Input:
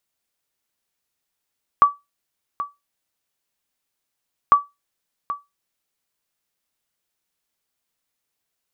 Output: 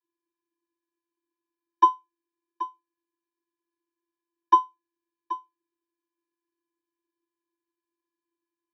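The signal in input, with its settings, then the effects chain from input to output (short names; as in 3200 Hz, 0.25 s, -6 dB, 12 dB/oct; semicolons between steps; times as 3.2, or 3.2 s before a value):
sonar ping 1150 Hz, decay 0.20 s, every 2.70 s, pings 2, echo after 0.78 s, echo -14 dB -4 dBFS
median filter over 15 samples; vocoder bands 32, square 339 Hz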